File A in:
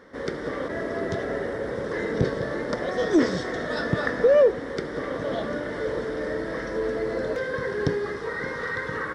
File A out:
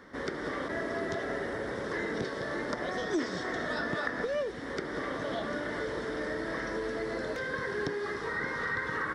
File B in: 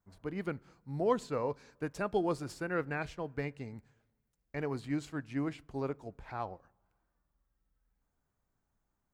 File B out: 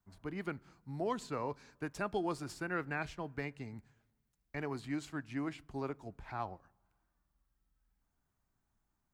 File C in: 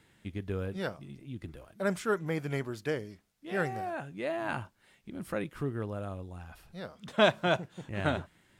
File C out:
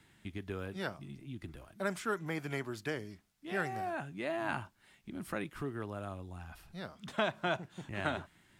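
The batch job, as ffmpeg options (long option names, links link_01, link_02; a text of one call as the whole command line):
ffmpeg -i in.wav -filter_complex "[0:a]acrossover=split=290|2300[link_01][link_02][link_03];[link_01]acompressor=threshold=-43dB:ratio=4[link_04];[link_02]acompressor=threshold=-29dB:ratio=4[link_05];[link_03]acompressor=threshold=-44dB:ratio=4[link_06];[link_04][link_05][link_06]amix=inputs=3:normalize=0,equalizer=frequency=500:width_type=o:width=0.46:gain=-7.5" out.wav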